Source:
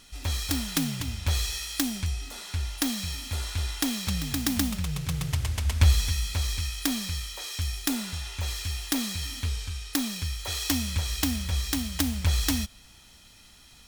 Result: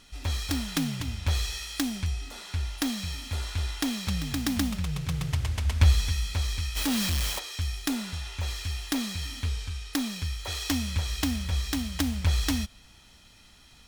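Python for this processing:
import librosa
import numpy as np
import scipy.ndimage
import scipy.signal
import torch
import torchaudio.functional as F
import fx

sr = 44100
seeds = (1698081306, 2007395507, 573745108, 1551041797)

y = fx.high_shelf(x, sr, hz=6500.0, db=-8.0)
y = fx.quant_companded(y, sr, bits=2, at=(6.75, 7.38), fade=0.02)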